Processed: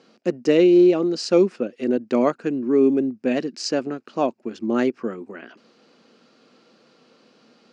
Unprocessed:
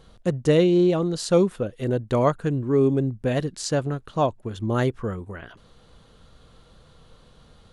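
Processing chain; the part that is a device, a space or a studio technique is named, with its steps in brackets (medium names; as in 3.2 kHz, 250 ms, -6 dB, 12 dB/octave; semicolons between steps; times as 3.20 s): television speaker (cabinet simulation 220–6700 Hz, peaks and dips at 240 Hz +8 dB, 350 Hz +5 dB, 1 kHz -4 dB, 2.5 kHz +7 dB, 3.5 kHz -8 dB, 5 kHz +8 dB)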